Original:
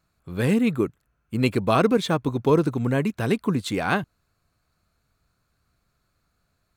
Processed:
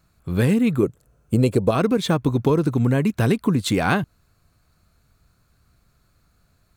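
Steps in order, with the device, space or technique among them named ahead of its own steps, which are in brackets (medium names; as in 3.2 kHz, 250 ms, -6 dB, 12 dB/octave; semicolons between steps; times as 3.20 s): 0.83–1.71 s: graphic EQ 125/500/2000/8000 Hz +4/+11/-5/+7 dB; ASMR close-microphone chain (bass shelf 250 Hz +6 dB; compression 5:1, threshold -21 dBFS, peak gain reduction 12 dB; treble shelf 6.1 kHz +4 dB); trim +5.5 dB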